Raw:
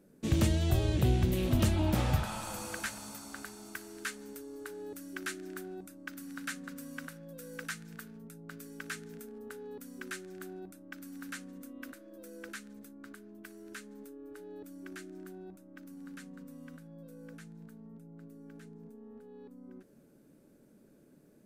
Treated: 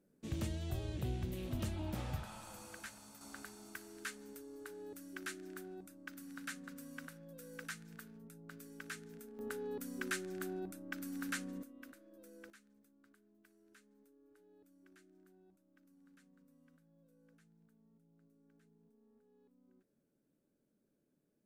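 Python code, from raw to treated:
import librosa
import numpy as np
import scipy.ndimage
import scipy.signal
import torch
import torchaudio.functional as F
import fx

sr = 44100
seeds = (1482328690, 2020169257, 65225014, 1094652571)

y = fx.gain(x, sr, db=fx.steps((0.0, -12.0), (3.21, -6.0), (9.39, 2.5), (11.63, -9.0), (12.5, -19.0)))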